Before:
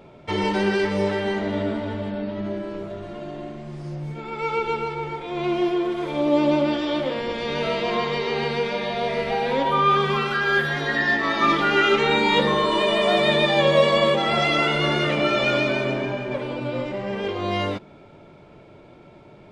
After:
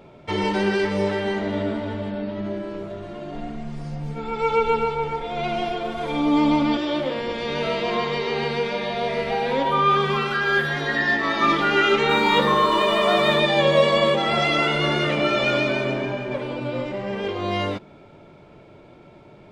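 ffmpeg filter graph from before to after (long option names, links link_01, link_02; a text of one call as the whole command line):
ffmpeg -i in.wav -filter_complex "[0:a]asettb=1/sr,asplit=3[link_01][link_02][link_03];[link_01]atrim=end=3.324[link_04];[link_02]atrim=start=3.32:end=6.77,asetpts=PTS-STARTPTS,afade=type=in:duration=0.004:curve=qsin,afade=type=out:start_time=3.446:duration=0.004:curve=qsin,lowshelf=frequency=93:gain=10,aecho=1:1:4.3:0.83,atrim=end_sample=152145[link_05];[link_03]atrim=start=6.766[link_06];[link_04][link_05]acrossfade=duration=0.004:curve1=hsin:curve2=qsin[link_07];[link_07][link_06]acrossfade=duration=0.004:curve1=qsin:curve2=hsin,asettb=1/sr,asplit=3[link_08][link_09][link_10];[link_08]atrim=end=12.094[link_11];[link_09]atrim=start=12.09:end=13.4,asetpts=PTS-STARTPTS,afade=type=in:duration=0.004:curve=qsin,afade=type=out:start_time=1.306:duration=0.004:curve=qsin,equalizer=frequency=1200:width_type=o:width=0.48:gain=8.5,aeval=exprs='sgn(val(0))*max(abs(val(0))-0.0075,0)':channel_layout=same[link_12];[link_10]atrim=start=13.396[link_13];[link_11][link_12]acrossfade=duration=0.004:curve1=hsin:curve2=qsin[link_14];[link_14][link_13]acrossfade=duration=0.004:curve1=qsin:curve2=hsin" out.wav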